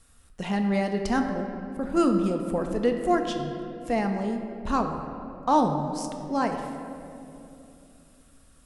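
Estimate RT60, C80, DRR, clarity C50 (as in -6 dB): 2.9 s, 6.5 dB, 4.0 dB, 5.5 dB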